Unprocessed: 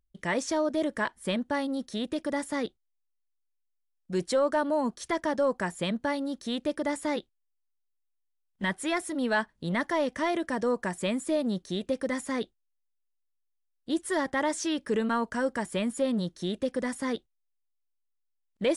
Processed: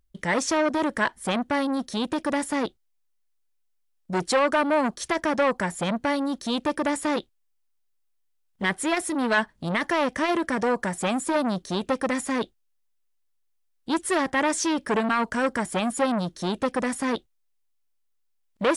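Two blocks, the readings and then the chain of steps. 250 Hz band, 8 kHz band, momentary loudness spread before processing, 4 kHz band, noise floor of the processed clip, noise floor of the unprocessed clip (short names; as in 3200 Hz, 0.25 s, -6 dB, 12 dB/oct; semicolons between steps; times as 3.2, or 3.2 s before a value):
+4.0 dB, +7.0 dB, 6 LU, +5.0 dB, -70 dBFS, -77 dBFS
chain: core saturation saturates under 1200 Hz; gain +7.5 dB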